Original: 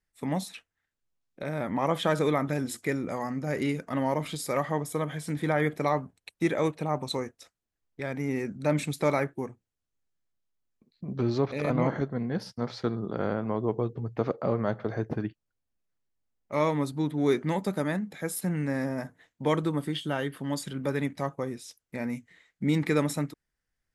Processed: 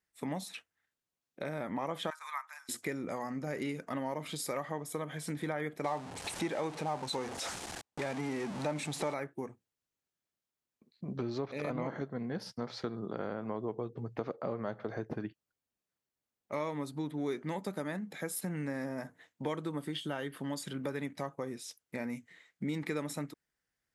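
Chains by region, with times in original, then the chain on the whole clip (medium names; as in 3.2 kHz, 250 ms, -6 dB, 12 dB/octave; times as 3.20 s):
2.10–2.69 s: gate -28 dBFS, range -6 dB + elliptic high-pass 960 Hz, stop band 60 dB + peaking EQ 3.2 kHz -10.5 dB 0.86 oct
5.84–9.14 s: jump at every zero crossing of -31.5 dBFS + low-pass 10 kHz 24 dB/octave + peaking EQ 830 Hz +8 dB 0.44 oct
whole clip: high-pass 180 Hz 6 dB/octave; compression 3:1, threshold -35 dBFS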